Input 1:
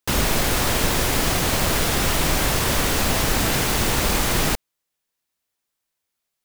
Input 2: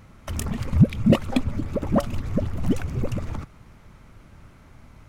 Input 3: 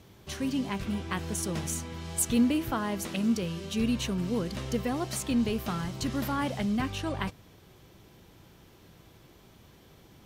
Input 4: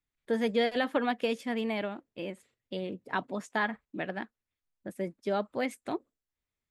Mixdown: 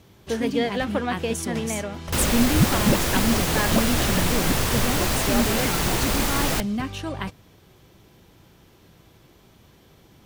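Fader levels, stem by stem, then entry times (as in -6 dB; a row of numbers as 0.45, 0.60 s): -3.0, -4.0, +2.0, +2.5 dB; 2.05, 1.80, 0.00, 0.00 s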